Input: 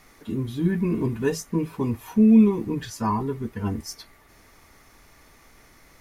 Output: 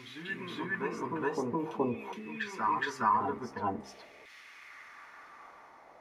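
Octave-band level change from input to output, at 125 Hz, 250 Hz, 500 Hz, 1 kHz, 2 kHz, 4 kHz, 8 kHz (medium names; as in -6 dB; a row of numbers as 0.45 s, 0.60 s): -18.5 dB, -17.5 dB, -8.0 dB, +2.5 dB, +4.0 dB, -4.5 dB, -13.5 dB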